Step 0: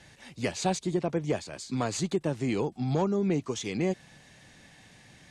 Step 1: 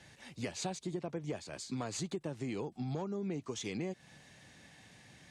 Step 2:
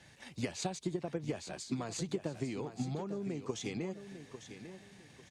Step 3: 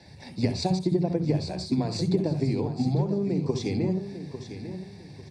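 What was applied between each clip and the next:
HPF 52 Hz; compressor 4:1, threshold -32 dBFS, peak gain reduction 9.5 dB; gain -3.5 dB
transient shaper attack +7 dB, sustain +3 dB; on a send: feedback echo 0.849 s, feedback 29%, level -11 dB; on the sum: gain -2 dB
reverb RT60 0.35 s, pre-delay 57 ms, DRR 10 dB

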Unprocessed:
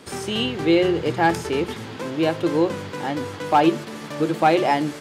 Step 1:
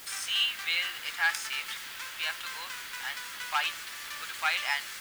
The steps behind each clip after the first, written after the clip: HPF 1400 Hz 24 dB/oct; added noise white -48 dBFS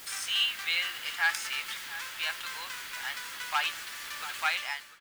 ending faded out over 0.55 s; outdoor echo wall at 120 m, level -13 dB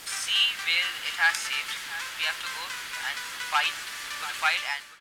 LPF 12000 Hz 12 dB/oct; gain +4.5 dB

